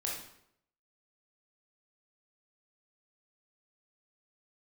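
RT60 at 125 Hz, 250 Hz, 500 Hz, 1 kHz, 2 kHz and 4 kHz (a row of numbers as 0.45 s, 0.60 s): 0.75 s, 0.75 s, 0.75 s, 0.70 s, 0.65 s, 0.60 s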